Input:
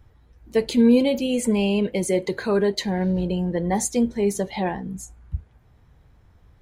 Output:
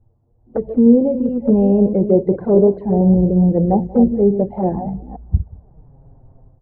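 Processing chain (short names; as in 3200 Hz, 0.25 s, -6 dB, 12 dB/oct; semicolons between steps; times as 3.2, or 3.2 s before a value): reverse delay 0.215 s, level -9 dB; Chebyshev low-pass 750 Hz, order 3; AGC gain up to 14 dB; envelope flanger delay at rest 8.9 ms, full sweep at -10 dBFS; on a send: echo 0.184 s -22 dB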